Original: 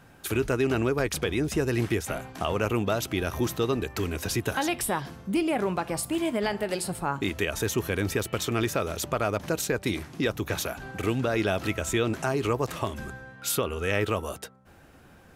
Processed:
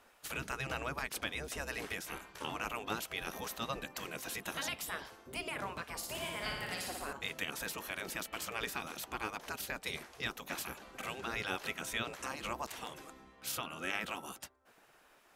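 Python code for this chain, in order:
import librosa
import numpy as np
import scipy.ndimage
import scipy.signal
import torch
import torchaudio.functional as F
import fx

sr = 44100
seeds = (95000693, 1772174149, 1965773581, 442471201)

y = fx.spec_gate(x, sr, threshold_db=-10, keep='weak')
y = fx.room_flutter(y, sr, wall_m=10.0, rt60_s=0.91, at=(5.97, 7.13))
y = F.gain(torch.from_numpy(y), -5.0).numpy()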